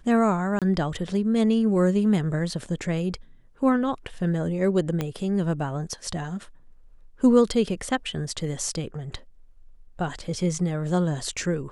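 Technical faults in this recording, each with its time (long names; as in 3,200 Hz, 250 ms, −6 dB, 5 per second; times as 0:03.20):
0:00.59–0:00.62: drop-out 27 ms
0:05.01: click −13 dBFS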